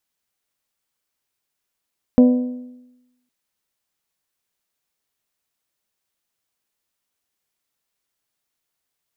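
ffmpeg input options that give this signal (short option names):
-f lavfi -i "aevalsrc='0.501*pow(10,-3*t/0.98)*sin(2*PI*249*t)+0.188*pow(10,-3*t/0.796)*sin(2*PI*498*t)+0.0708*pow(10,-3*t/0.754)*sin(2*PI*597.6*t)+0.0266*pow(10,-3*t/0.705)*sin(2*PI*747*t)+0.01*pow(10,-3*t/0.647)*sin(2*PI*996*t)':d=1.11:s=44100"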